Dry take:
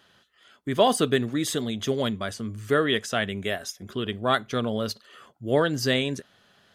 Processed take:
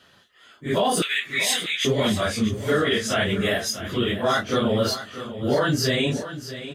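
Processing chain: phase scrambler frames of 0.1 s; in parallel at 0 dB: vocal rider within 3 dB; on the sum: limiter -12.5 dBFS, peak gain reduction 10.5 dB; 1.02–1.85 resonant high-pass 2200 Hz, resonance Q 5.2; feedback echo 0.641 s, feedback 28%, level -12.5 dB

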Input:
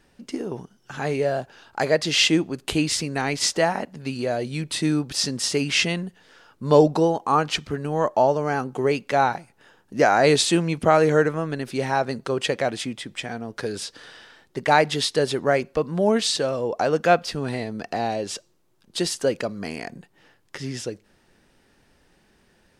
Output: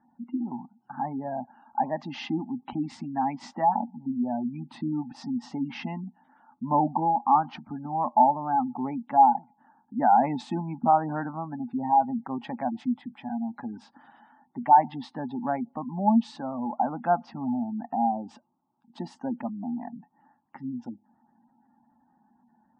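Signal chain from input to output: double band-pass 450 Hz, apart 1.8 oct; spectral gate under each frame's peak -25 dB strong; gain +6.5 dB

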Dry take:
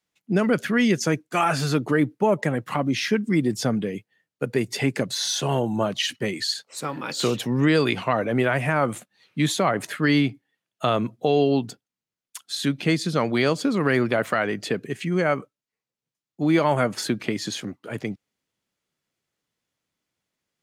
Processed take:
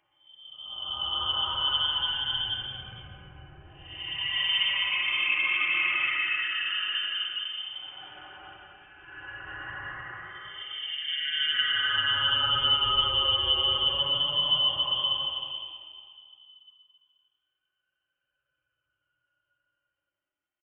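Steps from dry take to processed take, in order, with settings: comb 4.4 ms, depth 88%; Paulstretch 16×, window 0.10 s, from 9.32; inverted band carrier 3300 Hz; gain -9 dB

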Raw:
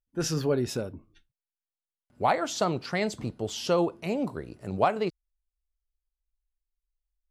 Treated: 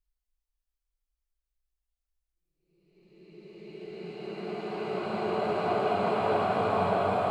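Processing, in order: whole clip reversed; Paulstretch 5.8×, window 1.00 s, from 1.28

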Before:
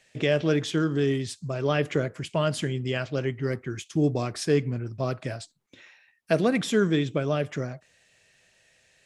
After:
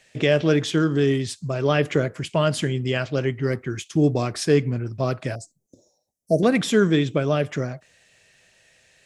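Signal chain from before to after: 5.35–6.43 elliptic band-stop 640–6000 Hz, stop band 50 dB; gain +4.5 dB

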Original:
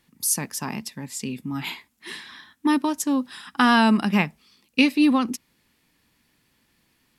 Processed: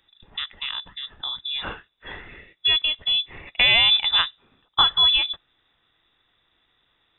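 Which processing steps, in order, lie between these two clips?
inverted band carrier 3700 Hz; low shelf 100 Hz +9.5 dB

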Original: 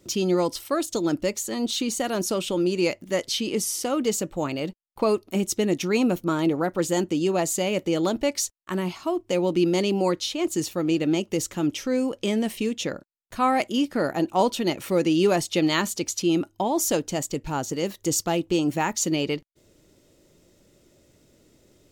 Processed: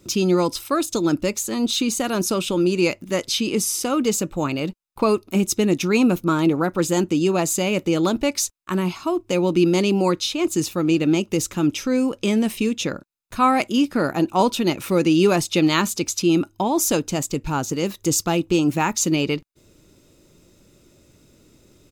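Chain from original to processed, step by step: comb 0.8 ms, depth 32%; gain +4 dB

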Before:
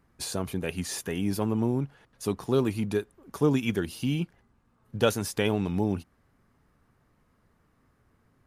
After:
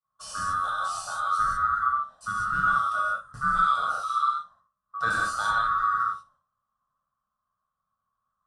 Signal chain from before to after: band-swap scrambler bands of 1000 Hz; expander -53 dBFS; elliptic low-pass 9800 Hz, stop band 80 dB; high shelf 2700 Hz -9 dB; fixed phaser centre 900 Hz, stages 4; flutter echo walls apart 10.1 m, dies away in 0.22 s; non-linear reverb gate 0.22 s flat, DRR -6 dB

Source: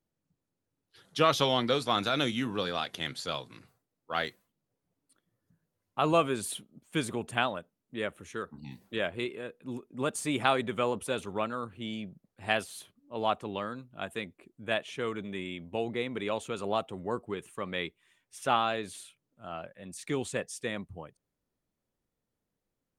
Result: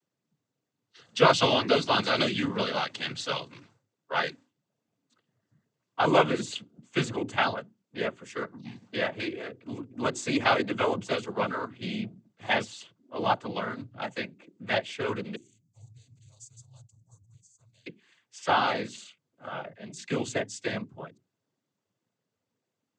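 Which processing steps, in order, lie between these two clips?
15.35–17.86 inverse Chebyshev band-stop 190–3200 Hz, stop band 40 dB; notches 60/120/180/240/300/360 Hz; noise vocoder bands 16; gain +4 dB

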